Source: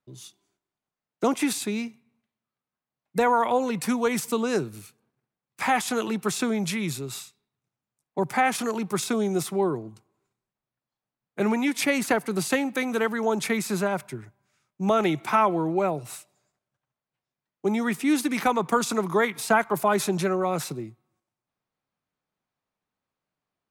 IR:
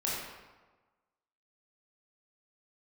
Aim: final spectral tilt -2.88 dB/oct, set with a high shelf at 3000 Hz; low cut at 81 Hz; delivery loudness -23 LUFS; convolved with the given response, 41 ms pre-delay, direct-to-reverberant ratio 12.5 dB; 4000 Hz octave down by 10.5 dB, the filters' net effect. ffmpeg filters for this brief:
-filter_complex "[0:a]highpass=81,highshelf=f=3k:g=-7.5,equalizer=f=4k:t=o:g=-7.5,asplit=2[a][b];[1:a]atrim=start_sample=2205,adelay=41[c];[b][c]afir=irnorm=-1:irlink=0,volume=-19dB[d];[a][d]amix=inputs=2:normalize=0,volume=3.5dB"

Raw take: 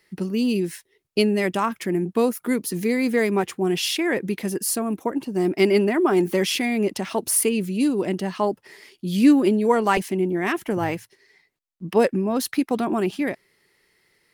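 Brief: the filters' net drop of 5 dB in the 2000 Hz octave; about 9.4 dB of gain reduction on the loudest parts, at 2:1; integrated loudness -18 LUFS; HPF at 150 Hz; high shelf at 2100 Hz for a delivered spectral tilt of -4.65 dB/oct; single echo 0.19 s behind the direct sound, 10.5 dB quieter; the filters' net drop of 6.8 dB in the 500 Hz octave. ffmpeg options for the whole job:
-af "highpass=150,equalizer=f=500:t=o:g=-9,equalizer=f=2k:t=o:g=-3,highshelf=f=2.1k:g=-4.5,acompressor=threshold=-31dB:ratio=2,aecho=1:1:190:0.299,volume=13.5dB"

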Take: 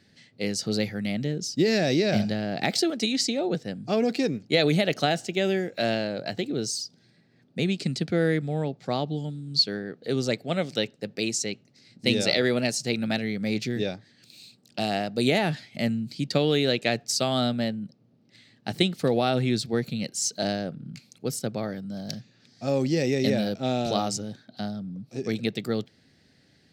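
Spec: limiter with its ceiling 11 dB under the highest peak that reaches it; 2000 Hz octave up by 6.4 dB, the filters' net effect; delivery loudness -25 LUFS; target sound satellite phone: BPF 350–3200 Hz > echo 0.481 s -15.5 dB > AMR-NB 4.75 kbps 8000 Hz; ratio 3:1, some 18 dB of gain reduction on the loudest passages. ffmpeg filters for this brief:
-af "equalizer=f=2k:t=o:g=8.5,acompressor=threshold=-41dB:ratio=3,alimiter=level_in=6dB:limit=-24dB:level=0:latency=1,volume=-6dB,highpass=350,lowpass=3.2k,aecho=1:1:481:0.168,volume=22.5dB" -ar 8000 -c:a libopencore_amrnb -b:a 4750

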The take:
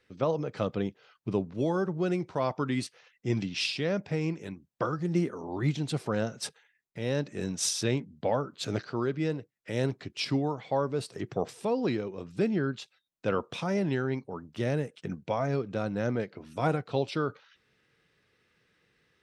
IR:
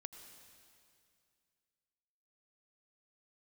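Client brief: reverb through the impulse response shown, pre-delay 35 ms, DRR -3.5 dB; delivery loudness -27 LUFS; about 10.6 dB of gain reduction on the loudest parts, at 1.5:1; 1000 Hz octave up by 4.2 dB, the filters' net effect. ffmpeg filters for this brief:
-filter_complex "[0:a]equalizer=f=1k:t=o:g=5.5,acompressor=threshold=-52dB:ratio=1.5,asplit=2[a][b];[1:a]atrim=start_sample=2205,adelay=35[c];[b][c]afir=irnorm=-1:irlink=0,volume=8.5dB[d];[a][d]amix=inputs=2:normalize=0,volume=8dB"

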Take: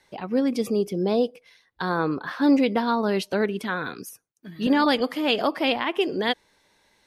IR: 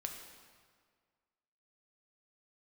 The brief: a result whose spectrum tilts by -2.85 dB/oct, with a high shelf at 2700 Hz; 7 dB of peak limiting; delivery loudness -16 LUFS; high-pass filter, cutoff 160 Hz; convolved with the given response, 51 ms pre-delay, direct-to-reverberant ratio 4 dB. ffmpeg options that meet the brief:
-filter_complex "[0:a]highpass=160,highshelf=f=2.7k:g=6,alimiter=limit=-13dB:level=0:latency=1,asplit=2[a][b];[1:a]atrim=start_sample=2205,adelay=51[c];[b][c]afir=irnorm=-1:irlink=0,volume=-3dB[d];[a][d]amix=inputs=2:normalize=0,volume=8dB"

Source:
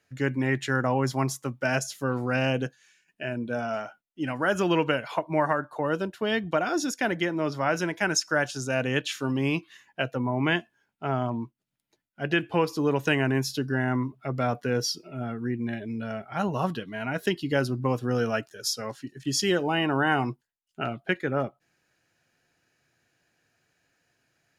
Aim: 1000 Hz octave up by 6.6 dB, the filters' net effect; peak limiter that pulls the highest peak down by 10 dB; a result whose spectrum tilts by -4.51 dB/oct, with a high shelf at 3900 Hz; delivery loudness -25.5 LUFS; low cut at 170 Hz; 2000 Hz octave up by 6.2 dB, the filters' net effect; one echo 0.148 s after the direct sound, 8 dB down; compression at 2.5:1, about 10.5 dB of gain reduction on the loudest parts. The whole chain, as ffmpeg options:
-af "highpass=170,equalizer=f=1k:t=o:g=7.5,equalizer=f=2k:t=o:g=7,highshelf=f=3.9k:g=-8.5,acompressor=threshold=-31dB:ratio=2.5,alimiter=limit=-22.5dB:level=0:latency=1,aecho=1:1:148:0.398,volume=8.5dB"

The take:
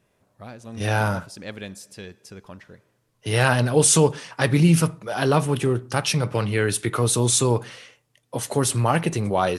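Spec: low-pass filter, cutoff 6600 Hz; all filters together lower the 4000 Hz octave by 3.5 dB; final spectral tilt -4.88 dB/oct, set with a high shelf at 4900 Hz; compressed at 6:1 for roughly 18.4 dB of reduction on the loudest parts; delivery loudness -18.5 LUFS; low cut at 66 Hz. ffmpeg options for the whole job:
-af "highpass=66,lowpass=6.6k,equalizer=f=4k:t=o:g=-6,highshelf=f=4.9k:g=4,acompressor=threshold=-33dB:ratio=6,volume=18.5dB"

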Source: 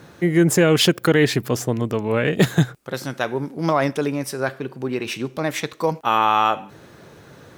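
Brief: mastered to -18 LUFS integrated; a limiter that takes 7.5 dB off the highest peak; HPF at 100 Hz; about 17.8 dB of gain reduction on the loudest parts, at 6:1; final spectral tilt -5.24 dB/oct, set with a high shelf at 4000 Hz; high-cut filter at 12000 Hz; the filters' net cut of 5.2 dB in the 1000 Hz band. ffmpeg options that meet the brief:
-af "highpass=100,lowpass=12k,equalizer=f=1k:t=o:g=-6.5,highshelf=f=4k:g=-5,acompressor=threshold=-32dB:ratio=6,volume=20dB,alimiter=limit=-5.5dB:level=0:latency=1"

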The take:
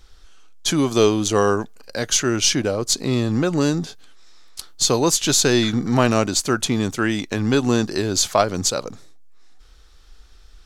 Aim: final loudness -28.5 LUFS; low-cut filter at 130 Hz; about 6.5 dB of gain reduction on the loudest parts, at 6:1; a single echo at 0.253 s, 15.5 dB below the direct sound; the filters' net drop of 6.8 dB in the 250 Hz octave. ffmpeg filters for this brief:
-af "highpass=130,equalizer=f=250:t=o:g=-8.5,acompressor=threshold=-20dB:ratio=6,aecho=1:1:253:0.168,volume=-3.5dB"

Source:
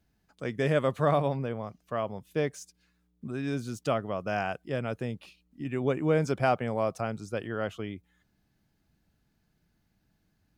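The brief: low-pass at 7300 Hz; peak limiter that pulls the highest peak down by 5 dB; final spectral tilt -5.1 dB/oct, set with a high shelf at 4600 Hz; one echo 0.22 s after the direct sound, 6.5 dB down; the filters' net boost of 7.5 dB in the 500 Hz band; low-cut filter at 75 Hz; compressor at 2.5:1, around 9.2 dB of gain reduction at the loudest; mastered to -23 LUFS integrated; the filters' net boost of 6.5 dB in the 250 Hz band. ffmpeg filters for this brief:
-af "highpass=75,lowpass=7.3k,equalizer=f=250:t=o:g=6,equalizer=f=500:t=o:g=7.5,highshelf=f=4.6k:g=5,acompressor=threshold=-28dB:ratio=2.5,alimiter=limit=-20.5dB:level=0:latency=1,aecho=1:1:220:0.473,volume=9dB"

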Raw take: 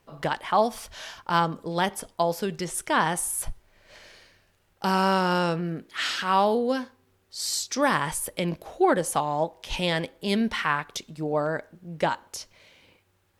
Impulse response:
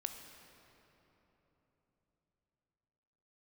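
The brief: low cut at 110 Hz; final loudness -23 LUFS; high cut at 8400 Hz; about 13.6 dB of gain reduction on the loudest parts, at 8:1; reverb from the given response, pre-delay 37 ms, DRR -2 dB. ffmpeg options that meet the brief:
-filter_complex "[0:a]highpass=110,lowpass=8.4k,acompressor=threshold=-30dB:ratio=8,asplit=2[a][b];[1:a]atrim=start_sample=2205,adelay=37[c];[b][c]afir=irnorm=-1:irlink=0,volume=3dB[d];[a][d]amix=inputs=2:normalize=0,volume=8.5dB"

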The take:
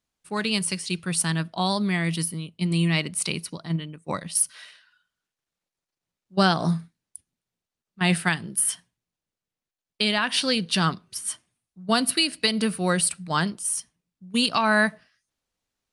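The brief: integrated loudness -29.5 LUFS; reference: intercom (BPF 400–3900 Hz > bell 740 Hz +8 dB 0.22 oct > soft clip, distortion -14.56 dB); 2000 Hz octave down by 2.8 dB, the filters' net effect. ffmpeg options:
-af "highpass=400,lowpass=3.9k,equalizer=f=740:t=o:w=0.22:g=8,equalizer=f=2k:t=o:g=-3.5,asoftclip=threshold=-16.5dB"

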